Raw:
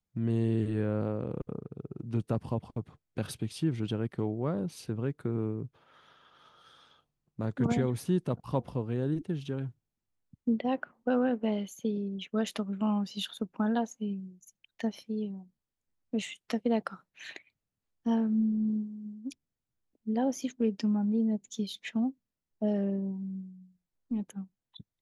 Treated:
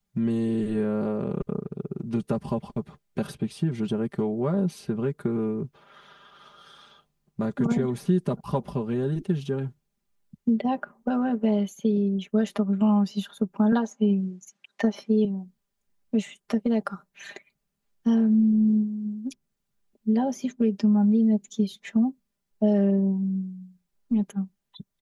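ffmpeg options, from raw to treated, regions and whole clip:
-filter_complex "[0:a]asettb=1/sr,asplit=3[a][b][c];[a]atrim=end=13.724[d];[b]atrim=start=13.72:end=15.25,asetpts=PTS-STARTPTS,afade=t=in:d=0.004:c=qsin,afade=t=out:st=1.526:d=0.004:c=qsin,equalizer=f=1.2k:w=0.58:g=4.5,acontrast=55,highpass=200,lowpass=7.2k[e];[c]atrim=start=15.246[f];[d][e]acrossfade=d=0.004:c1=hsin:c2=qsin[g];[g][f]acrossfade=d=0.004:c1=qsin:c2=hsin,acrossover=split=1600|5000[h][i][j];[h]acompressor=threshold=-28dB:ratio=4[k];[i]acompressor=threshold=-59dB:ratio=4[l];[j]acompressor=threshold=-57dB:ratio=4[m];[k][l][m]amix=inputs=3:normalize=0,aecho=1:1:5:0.76,volume=6dB"

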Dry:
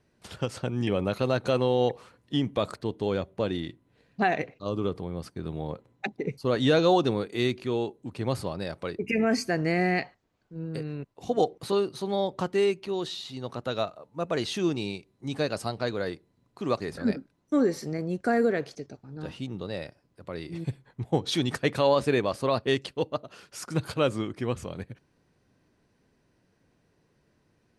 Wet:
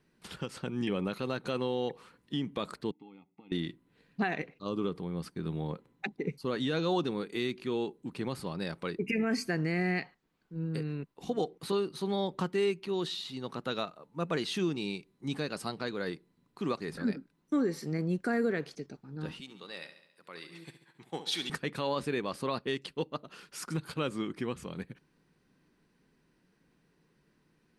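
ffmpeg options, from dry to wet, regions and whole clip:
-filter_complex "[0:a]asettb=1/sr,asplit=3[a][b][c];[a]atrim=end=2.914[d];[b]atrim=start=2.91:end=3.52,asetpts=PTS-STARTPTS,afade=t=in:d=0.004:c=qsin,afade=t=out:st=0.606:d=0.004:c=qsin,aecho=1:1:1.5:0.78,atrim=end_sample=26901,acompressor=threshold=-29dB:ratio=10:attack=3.2:release=140:knee=1:detection=peak,asplit=3[e][f][g];[e]bandpass=f=300:t=q:w=8,volume=0dB[h];[f]bandpass=f=870:t=q:w=8,volume=-6dB[i];[g]bandpass=f=2.24k:t=q:w=8,volume=-9dB[j];[h][i][j]amix=inputs=3:normalize=0[k];[c]atrim=start=3.516[l];[d][k]acrossfade=d=0.004:c1=hsin:c2=qsin[m];[m][l]acrossfade=d=0.004:c1=qsin:c2=hsin,asettb=1/sr,asplit=3[n][o][p];[n]atrim=end=19.404[q];[o]atrim=start=19.4:end=21.5,asetpts=PTS-STARTPTS,afade=t=in:d=0.004:c=qsin,afade=t=out:st=2.096:d=0.004:c=qsin,highpass=f=1.3k:p=1,aecho=1:1:69|138|207|276|345|414:0.251|0.146|0.0845|0.049|0.0284|0.0165,atrim=end_sample=92610[r];[p]atrim=start=21.496[s];[q][r]acrossfade=d=0.004:c1=hsin:c2=qsin[t];[t][s]acrossfade=d=0.004:c1=qsin:c2=hsin,equalizer=f=160:t=o:w=0.67:g=7,equalizer=f=630:t=o:w=0.67:g=-8,equalizer=f=6.3k:t=o:w=0.67:g=-4,alimiter=limit=-19.5dB:level=0:latency=1:release=311,equalizer=f=100:t=o:w=1.1:g=-14"

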